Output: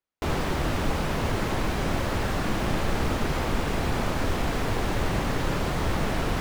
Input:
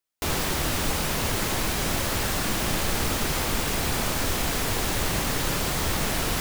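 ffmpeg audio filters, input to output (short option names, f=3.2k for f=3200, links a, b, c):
-af "lowpass=f=1.4k:p=1,volume=2dB"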